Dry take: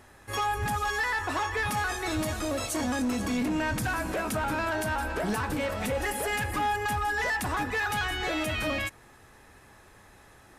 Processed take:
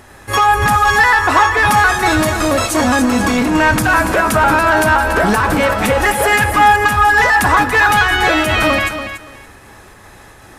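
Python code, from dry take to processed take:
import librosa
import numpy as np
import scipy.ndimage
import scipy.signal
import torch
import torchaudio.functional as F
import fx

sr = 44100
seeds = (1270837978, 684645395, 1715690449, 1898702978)

p1 = fx.dynamic_eq(x, sr, hz=1200.0, q=0.99, threshold_db=-42.0, ratio=4.0, max_db=6)
p2 = fx.volume_shaper(p1, sr, bpm=157, per_beat=1, depth_db=-7, release_ms=100.0, shape='slow start')
p3 = p1 + (p2 * librosa.db_to_amplitude(-2.0))
p4 = fx.echo_feedback(p3, sr, ms=285, feedback_pct=19, wet_db=-10)
y = p4 * librosa.db_to_amplitude(9.0)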